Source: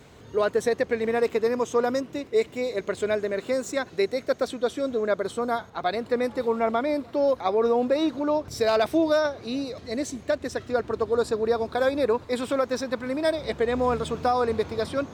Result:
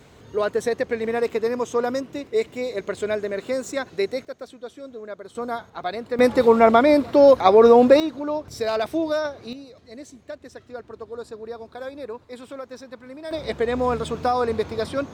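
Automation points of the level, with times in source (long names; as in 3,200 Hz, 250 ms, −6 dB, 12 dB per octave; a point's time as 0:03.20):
+0.5 dB
from 0:04.25 −11 dB
from 0:05.35 −2 dB
from 0:06.19 +10 dB
from 0:08.00 −2 dB
from 0:09.53 −11 dB
from 0:13.31 +1.5 dB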